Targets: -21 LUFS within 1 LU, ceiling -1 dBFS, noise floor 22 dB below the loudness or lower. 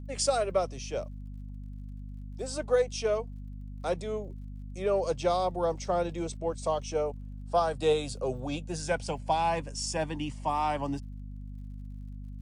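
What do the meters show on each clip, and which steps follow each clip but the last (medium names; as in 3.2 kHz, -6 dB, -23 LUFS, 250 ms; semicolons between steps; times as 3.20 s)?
tick rate 36 per s; hum 50 Hz; highest harmonic 250 Hz; hum level -38 dBFS; loudness -31.0 LUFS; peak level -14.5 dBFS; loudness target -21.0 LUFS
-> de-click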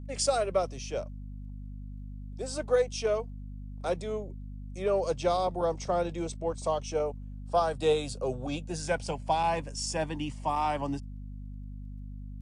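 tick rate 0.081 per s; hum 50 Hz; highest harmonic 250 Hz; hum level -38 dBFS
-> hum notches 50/100/150/200/250 Hz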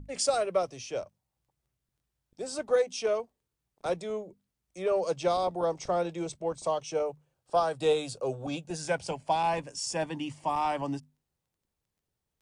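hum not found; loudness -31.0 LUFS; peak level -15.0 dBFS; loudness target -21.0 LUFS
-> trim +10 dB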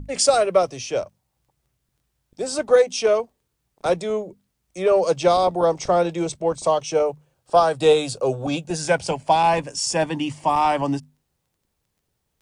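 loudness -21.0 LUFS; peak level -5.0 dBFS; noise floor -75 dBFS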